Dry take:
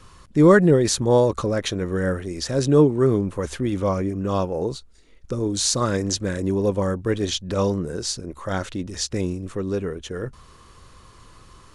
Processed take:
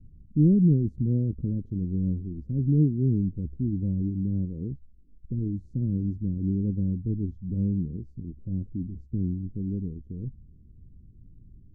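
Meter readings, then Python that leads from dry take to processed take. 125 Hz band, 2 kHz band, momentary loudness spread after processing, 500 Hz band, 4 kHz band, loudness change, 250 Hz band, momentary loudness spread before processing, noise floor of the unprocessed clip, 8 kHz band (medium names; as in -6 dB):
0.0 dB, under -40 dB, 14 LU, -19.5 dB, under -40 dB, -5.5 dB, -3.5 dB, 12 LU, -49 dBFS, under -40 dB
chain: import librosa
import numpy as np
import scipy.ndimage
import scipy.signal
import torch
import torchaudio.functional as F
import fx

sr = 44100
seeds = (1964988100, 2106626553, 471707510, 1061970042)

y = scipy.signal.sosfilt(scipy.signal.cheby2(4, 60, 850.0, 'lowpass', fs=sr, output='sos'), x)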